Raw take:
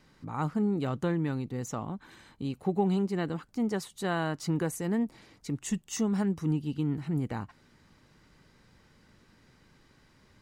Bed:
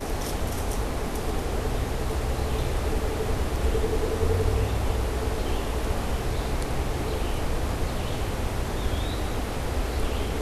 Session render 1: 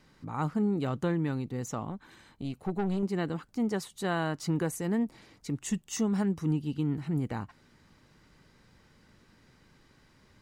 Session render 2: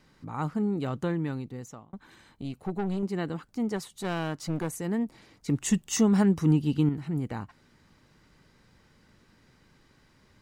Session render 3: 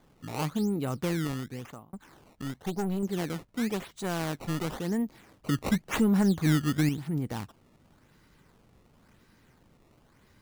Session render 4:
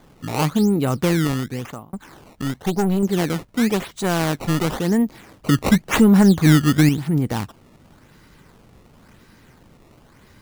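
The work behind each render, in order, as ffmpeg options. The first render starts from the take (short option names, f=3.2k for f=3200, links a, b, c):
-filter_complex "[0:a]asettb=1/sr,asplit=3[a][b][c];[a]atrim=end=1.904[d];[b]atrim=start=1.9:end=3.03,asetpts=PTS-STARTPTS,afade=t=in:d=0.004:c=qsin,afade=t=out:st=1.126:d=0.004:c=qsin,aeval=exprs='(tanh(17.8*val(0)+0.45)-tanh(0.45))/17.8':c=same[e];[c]atrim=start=3.026[f];[d][e]acrossfade=d=0.004:c1=hsin:c2=qsin[g];[g][f]acrossfade=d=0.004:c1=qsin:c2=hsin"
-filter_complex "[0:a]asettb=1/sr,asplit=3[a][b][c];[a]atrim=end=3.764[d];[b]atrim=start=3.76:end=4.7,asetpts=PTS-STARTPTS,afade=t=in:d=0.004:c=qsin,afade=t=out:st=0.936:d=0.004:c=qsin,aeval=exprs='clip(val(0),-1,0.0211)':c=same[e];[c]atrim=start=4.696[f];[d][e]acrossfade=d=0.004:c1=hsin:c2=qsin[g];[g][f]acrossfade=d=0.004:c1=qsin:c2=hsin,asplit=4[h][i][j][k];[h]atrim=end=1.93,asetpts=PTS-STARTPTS,afade=t=out:st=1.06:d=0.87:c=qsin[l];[i]atrim=start=1.93:end=5.482,asetpts=PTS-STARTPTS,afade=t=in:d=0.004:c=hsin[m];[j]atrim=start=5.478:end=6.892,asetpts=PTS-STARTPTS,volume=6.5dB[n];[k]atrim=start=6.888[o];[l][m]concat=n=2:v=0:a=1[p];[p][n]acrossfade=d=0.004:c1=hsin:c2=hsin[q];[q][o]acrossfade=d=0.004:c1=hsin:c2=hsin"
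-af "acrusher=samples=16:mix=1:aa=0.000001:lfo=1:lforange=25.6:lforate=0.94,asoftclip=type=tanh:threshold=-15.5dB"
-af "volume=11dB"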